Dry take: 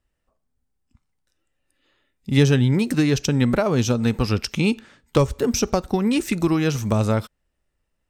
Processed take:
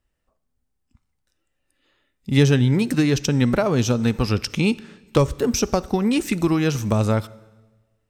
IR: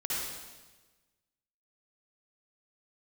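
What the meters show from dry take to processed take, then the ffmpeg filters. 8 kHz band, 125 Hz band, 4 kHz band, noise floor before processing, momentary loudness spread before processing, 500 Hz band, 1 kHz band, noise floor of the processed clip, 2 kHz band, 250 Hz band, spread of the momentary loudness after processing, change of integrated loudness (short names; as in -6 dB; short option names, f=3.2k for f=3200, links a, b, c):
+0.5 dB, +0.5 dB, +0.5 dB, -76 dBFS, 5 LU, +0.5 dB, +0.5 dB, -74 dBFS, +0.5 dB, +0.5 dB, 5 LU, +0.5 dB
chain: -filter_complex "[0:a]asplit=2[a][b];[1:a]atrim=start_sample=2205[c];[b][c]afir=irnorm=-1:irlink=0,volume=-26dB[d];[a][d]amix=inputs=2:normalize=0"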